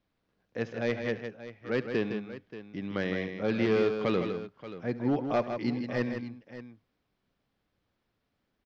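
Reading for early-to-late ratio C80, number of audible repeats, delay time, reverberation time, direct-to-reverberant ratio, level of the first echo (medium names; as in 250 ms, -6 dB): no reverb, 3, 72 ms, no reverb, no reverb, -17.5 dB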